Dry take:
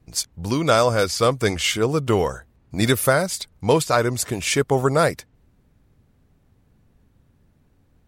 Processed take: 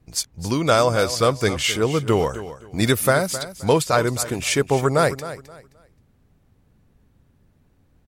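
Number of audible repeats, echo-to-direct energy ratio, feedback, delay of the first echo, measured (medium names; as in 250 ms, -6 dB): 2, -13.5 dB, 25%, 263 ms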